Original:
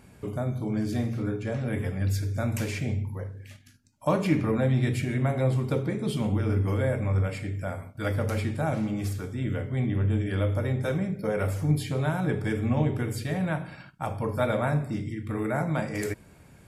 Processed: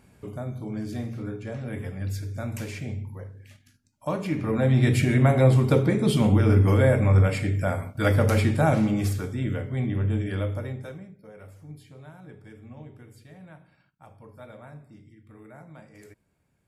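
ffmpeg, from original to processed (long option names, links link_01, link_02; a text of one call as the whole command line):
ffmpeg -i in.wav -af "volume=7dB,afade=type=in:start_time=4.36:duration=0.66:silence=0.281838,afade=type=out:start_time=8.66:duration=0.97:silence=0.446684,afade=type=out:start_time=10.26:duration=0.67:silence=0.237137,afade=type=out:start_time=10.93:duration=0.25:silence=0.473151" out.wav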